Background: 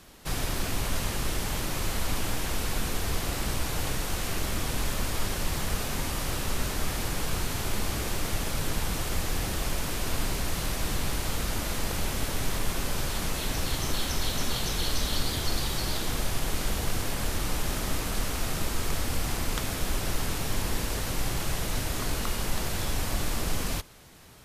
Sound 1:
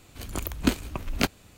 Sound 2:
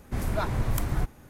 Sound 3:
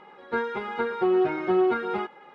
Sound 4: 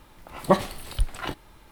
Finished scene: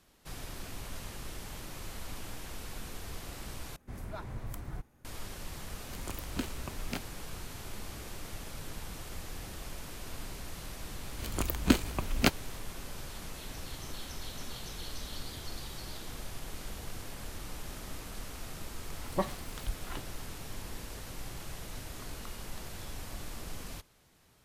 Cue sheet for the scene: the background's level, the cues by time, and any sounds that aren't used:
background −13 dB
0:03.76: overwrite with 2 −13.5 dB
0:05.72: mix in 1 −9 dB + brickwall limiter −12.5 dBFS
0:11.03: mix in 1 −1 dB
0:18.68: mix in 4 −12 dB
not used: 3

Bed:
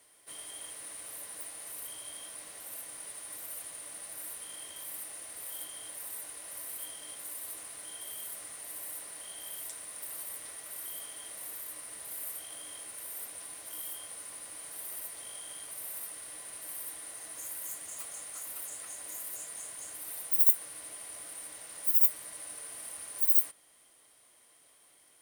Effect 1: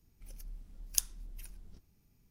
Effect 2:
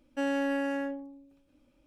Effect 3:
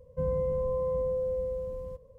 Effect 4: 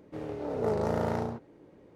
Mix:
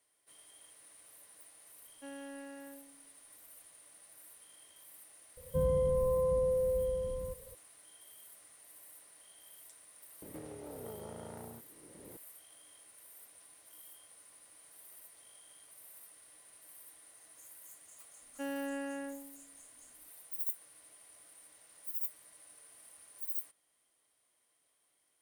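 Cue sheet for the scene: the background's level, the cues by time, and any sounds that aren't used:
bed −14 dB
0:01.85: mix in 2 −17.5 dB
0:05.37: mix in 3 −0.5 dB
0:10.22: mix in 4 −17.5 dB + multiband upward and downward compressor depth 100%
0:18.22: mix in 2 −9 dB
not used: 1

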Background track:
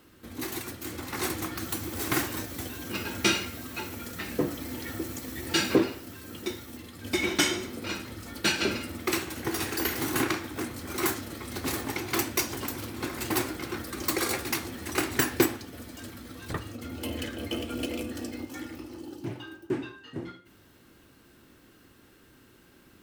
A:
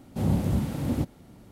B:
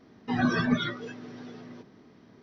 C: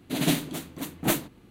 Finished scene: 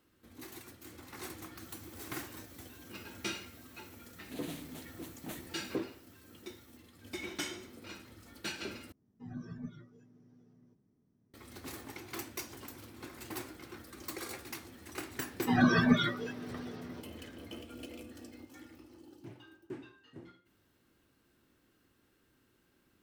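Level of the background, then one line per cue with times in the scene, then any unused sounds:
background track −14 dB
0:04.21: mix in C −13.5 dB + downward compressor 2 to 1, threshold −30 dBFS
0:08.92: overwrite with B −13 dB + drawn EQ curve 130 Hz 0 dB, 620 Hz −14 dB, 1,200 Hz −17 dB, 2,700 Hz −21 dB, 4,200 Hz −23 dB, 7,600 Hz −1 dB
0:15.19: mix in B
not used: A

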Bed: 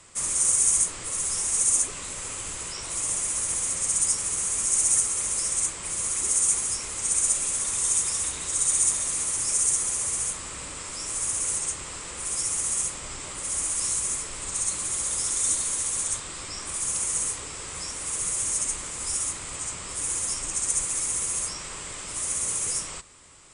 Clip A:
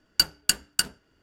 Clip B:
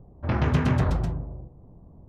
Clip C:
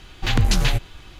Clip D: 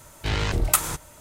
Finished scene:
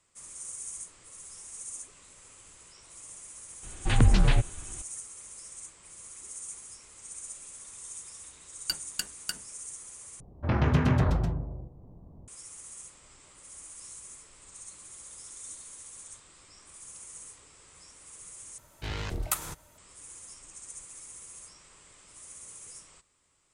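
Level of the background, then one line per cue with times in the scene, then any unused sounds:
bed −19 dB
0:03.63: mix in C −1.5 dB + head-to-tape spacing loss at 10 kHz 24 dB
0:08.50: mix in A −11 dB
0:10.20: overwrite with B −1.5 dB
0:18.58: overwrite with D −10 dB

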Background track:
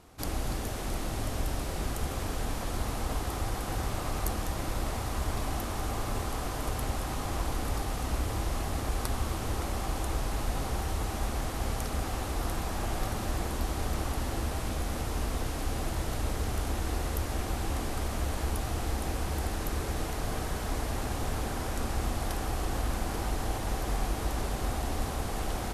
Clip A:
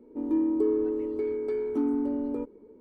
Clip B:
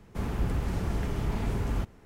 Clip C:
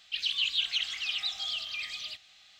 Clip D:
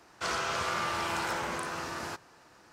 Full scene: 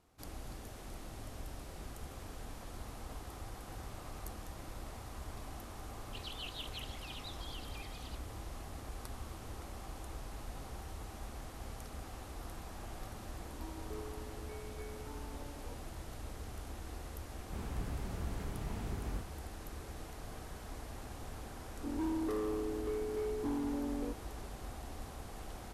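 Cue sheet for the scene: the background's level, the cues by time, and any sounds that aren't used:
background track −14 dB
0:06.01: mix in C −17 dB
0:13.30: mix in A −6 dB + high-pass filter 1,000 Hz
0:17.37: mix in B −11.5 dB
0:21.68: mix in A −7.5 dB + hard clipping −26 dBFS
not used: D

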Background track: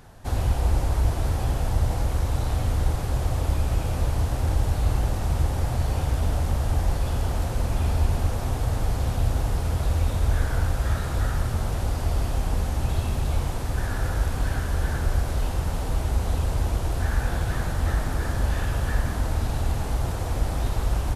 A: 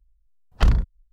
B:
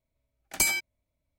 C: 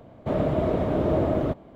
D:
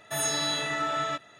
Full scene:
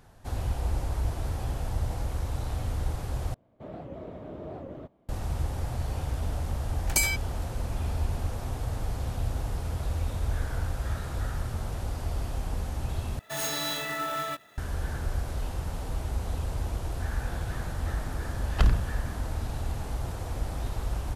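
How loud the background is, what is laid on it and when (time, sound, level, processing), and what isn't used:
background track −7 dB
0:03.34: overwrite with C −17 dB + wow of a warped record 78 rpm, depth 250 cents
0:06.36: mix in B −0.5 dB
0:13.19: overwrite with D −2.5 dB + converter with an unsteady clock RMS 0.022 ms
0:17.98: mix in A −4 dB

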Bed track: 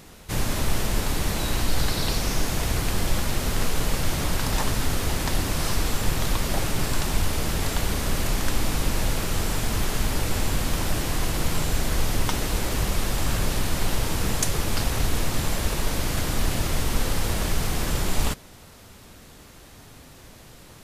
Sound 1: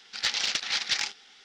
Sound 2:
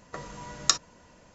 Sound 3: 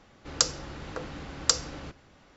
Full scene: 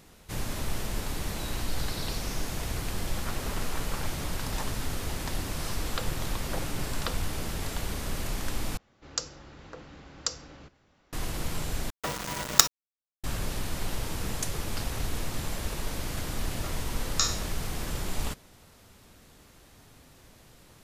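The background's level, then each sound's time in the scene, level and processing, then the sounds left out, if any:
bed track −8 dB
0:03.02: mix in 1 −8.5 dB + voice inversion scrambler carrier 3,200 Hz
0:05.57: mix in 3 −3.5 dB + Butterworth low-pass 3,700 Hz
0:08.77: overwrite with 3 −8 dB
0:11.90: overwrite with 2 −1.5 dB + log-companded quantiser 2 bits
0:16.50: mix in 2 −7.5 dB + peak hold with a decay on every bin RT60 0.51 s

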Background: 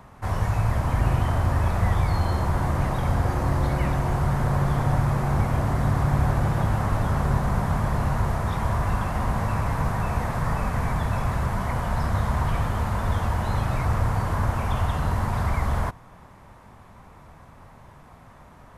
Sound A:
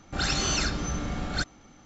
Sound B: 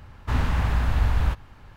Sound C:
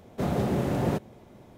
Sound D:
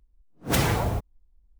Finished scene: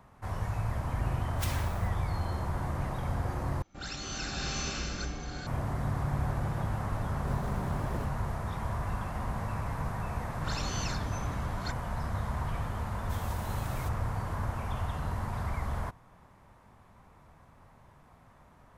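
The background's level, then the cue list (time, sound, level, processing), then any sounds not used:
background −9.5 dB
0:00.89: mix in D −11 dB + Bessel high-pass filter 1,500 Hz
0:03.62: overwrite with A −12.5 dB + slow-attack reverb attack 600 ms, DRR −4.5 dB
0:07.08: mix in C −15 dB + stylus tracing distortion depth 0.25 ms
0:10.28: mix in A −11 dB
0:12.91: mix in C −1 dB + first-order pre-emphasis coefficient 0.97
not used: B

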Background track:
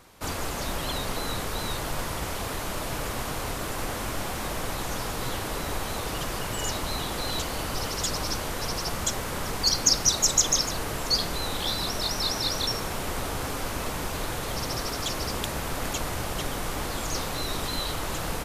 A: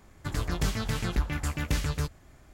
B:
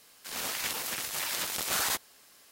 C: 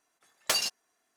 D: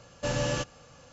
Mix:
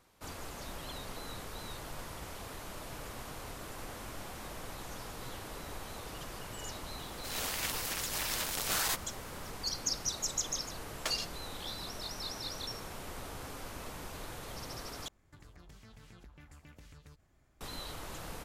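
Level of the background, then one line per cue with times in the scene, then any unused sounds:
background track −13 dB
0:06.99: mix in B −3 dB
0:10.56: mix in C −7.5 dB + high-shelf EQ 8,400 Hz −8.5 dB
0:15.08: overwrite with A −14.5 dB + downward compressor 5 to 1, threshold −38 dBFS
not used: D

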